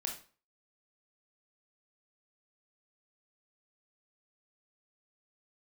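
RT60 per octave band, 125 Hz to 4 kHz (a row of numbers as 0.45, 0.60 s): 0.40, 0.40, 0.40, 0.40, 0.35, 0.35 s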